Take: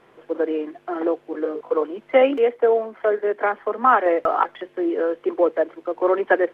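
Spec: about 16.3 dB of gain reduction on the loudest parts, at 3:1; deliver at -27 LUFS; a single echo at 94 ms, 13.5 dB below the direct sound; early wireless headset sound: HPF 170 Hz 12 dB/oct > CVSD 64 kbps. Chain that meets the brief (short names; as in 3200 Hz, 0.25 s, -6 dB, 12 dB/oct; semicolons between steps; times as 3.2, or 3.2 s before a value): compressor 3:1, threshold -34 dBFS; HPF 170 Hz 12 dB/oct; echo 94 ms -13.5 dB; CVSD 64 kbps; gain +7.5 dB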